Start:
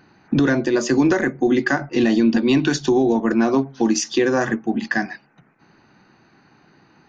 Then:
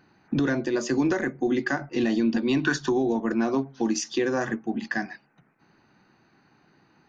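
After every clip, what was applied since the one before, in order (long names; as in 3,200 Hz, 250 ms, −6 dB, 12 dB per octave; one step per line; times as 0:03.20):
gain on a spectral selection 0:02.64–0:02.92, 920–1,900 Hz +9 dB
level −7 dB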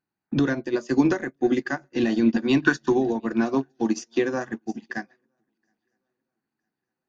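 feedback echo with a long and a short gap by turns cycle 960 ms, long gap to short 3 to 1, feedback 31%, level −19.5 dB
expander for the loud parts 2.5 to 1, over −42 dBFS
level +6.5 dB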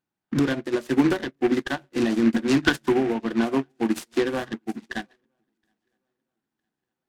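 short delay modulated by noise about 1,500 Hz, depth 0.055 ms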